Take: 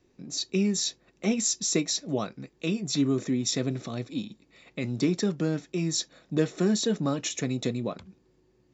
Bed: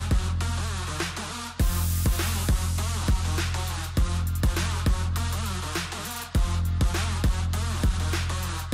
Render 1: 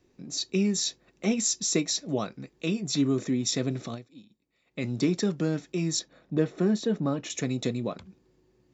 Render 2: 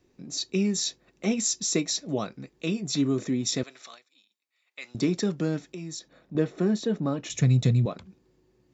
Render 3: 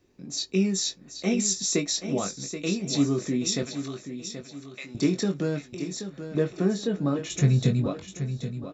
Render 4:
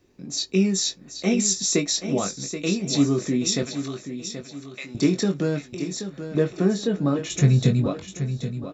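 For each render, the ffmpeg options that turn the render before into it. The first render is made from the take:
-filter_complex "[0:a]asettb=1/sr,asplit=3[a][b][c];[a]atrim=end=5.994[d];[b]atrim=start=5.99:end=7.3,asetpts=PTS-STARTPTS,afade=t=in:d=0.004:c=qsin,afade=t=out:st=1.306:d=0.004:c=qsin,lowpass=f=1.7k:p=1[e];[c]atrim=start=7.296[f];[d][e]acrossfade=d=0.004:c1=hsin:c2=qsin[g];[g][f]acrossfade=d=0.004:c1=qsin:c2=hsin,asplit=3[h][i][j];[h]atrim=end=4.3,asetpts=PTS-STARTPTS,afade=t=out:st=3.94:d=0.36:c=exp:silence=0.133352[k];[i]atrim=start=4.3:end=4.43,asetpts=PTS-STARTPTS,volume=-17.5dB[l];[j]atrim=start=4.43,asetpts=PTS-STARTPTS,afade=t=in:d=0.36:c=exp:silence=0.133352[m];[k][l][m]concat=n=3:v=0:a=1"
-filter_complex "[0:a]asettb=1/sr,asplit=3[a][b][c];[a]atrim=end=3.634[d];[b]atrim=start=3.63:end=4.95,asetpts=PTS-STARTPTS,afade=t=in:d=0.004:c=qsin,afade=t=out:st=1.316:d=0.004:c=qsin,highpass=1.2k[e];[c]atrim=start=4.946[f];[d][e]acrossfade=d=0.004:c1=hsin:c2=qsin[g];[g][f]acrossfade=d=0.004:c1=qsin:c2=hsin,asettb=1/sr,asplit=3[h][i][j];[h]atrim=end=5.584[k];[i]atrim=start=5.58:end=6.35,asetpts=PTS-STARTPTS,afade=t=in:d=0.004:c=qsin,afade=t=out:st=0.766:d=0.004:c=qsin,acompressor=threshold=-38dB:ratio=2.5:attack=3.2:release=140:knee=1:detection=peak[l];[j]atrim=start=6.346[m];[k][l]acrossfade=d=0.004:c1=hsin:c2=qsin[n];[n][m]acrossfade=d=0.004:c1=qsin:c2=hsin,asettb=1/sr,asplit=3[o][p][q];[o]atrim=end=7.294[r];[p]atrim=start=7.29:end=7.86,asetpts=PTS-STARTPTS,afade=t=in:d=0.004:c=qsin,afade=t=out:st=0.566:d=0.004:c=qsin,lowshelf=f=200:t=q:w=1.5:g=12[s];[q]atrim=start=7.856[t];[r][s]acrossfade=d=0.004:c1=hsin:c2=qsin[u];[u][t]acrossfade=d=0.004:c1=qsin:c2=hsin"
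-filter_complex "[0:a]asplit=2[a][b];[b]adelay=21,volume=-6.5dB[c];[a][c]amix=inputs=2:normalize=0,aecho=1:1:779|1558|2337|3116:0.316|0.12|0.0457|0.0174"
-af "volume=3.5dB"

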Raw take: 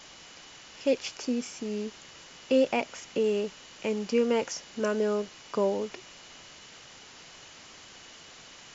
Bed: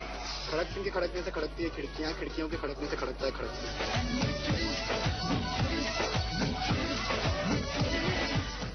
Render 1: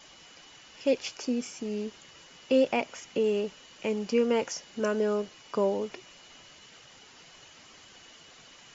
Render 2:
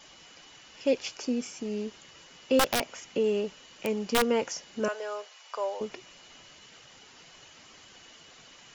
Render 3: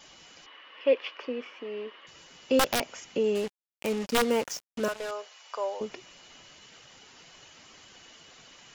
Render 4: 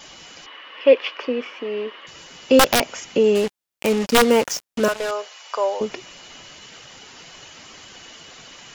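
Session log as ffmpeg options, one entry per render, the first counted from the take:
-af "afftdn=nr=6:nf=-50"
-filter_complex "[0:a]asettb=1/sr,asplit=3[a][b][c];[a]atrim=end=2.594[d];[b]atrim=start=2.59:end=4.24,asetpts=PTS-STARTPTS,afade=t=in:d=0.004:c=qsin,afade=t=out:st=1.646:d=0.004:c=qsin,aeval=exprs='(mod(7.08*val(0)+1,2)-1)/7.08':c=same[e];[c]atrim=start=4.236[f];[d][e]acrossfade=d=0.004:c1=hsin:c2=qsin[g];[g][f]acrossfade=d=0.004:c1=qsin:c2=hsin,asettb=1/sr,asplit=3[h][i][j];[h]atrim=end=4.884[k];[i]atrim=start=4.88:end=5.81,asetpts=PTS-STARTPTS,afade=t=in:d=0.004:c=qsin,afade=t=out:st=0.926:d=0.004:c=qsin,highpass=f=590:w=0.5412,highpass=f=590:w=1.3066[l];[j]atrim=start=5.806[m];[k][l]acrossfade=d=0.004:c1=hsin:c2=qsin[n];[n][m]acrossfade=d=0.004:c1=qsin:c2=hsin"
-filter_complex "[0:a]asettb=1/sr,asplit=3[a][b][c];[a]atrim=end=0.464[d];[b]atrim=start=0.46:end=2.07,asetpts=PTS-STARTPTS,afade=t=in:d=0.004:c=qsin,afade=t=out:st=1.606:d=0.004:c=qsin,highpass=f=310:w=0.5412,highpass=f=310:w=1.3066,equalizer=f=360:t=q:w=4:g=-3,equalizer=f=530:t=q:w=4:g=4,equalizer=f=770:t=q:w=4:g=-4,equalizer=f=1.1k:t=q:w=4:g=10,equalizer=f=1.9k:t=q:w=4:g=6,equalizer=f=3k:t=q:w=4:g=4,lowpass=f=3.2k:w=0.5412,lowpass=f=3.2k:w=1.3066[e];[c]atrim=start=2.066[f];[d][e]acrossfade=d=0.004:c1=hsin:c2=qsin[g];[g][f]acrossfade=d=0.004:c1=qsin:c2=hsin,asettb=1/sr,asplit=3[h][i][j];[h]atrim=end=3.354[k];[i]atrim=start=3.35:end=5.11,asetpts=PTS-STARTPTS,afade=t=in:d=0.004:c=qsin,afade=t=out:st=1.756:d=0.004:c=qsin,acrusher=bits=5:mix=0:aa=0.5[l];[j]atrim=start=5.106[m];[k][l]acrossfade=d=0.004:c1=hsin:c2=qsin[n];[n][m]acrossfade=d=0.004:c1=qsin:c2=hsin"
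-af "volume=10dB"

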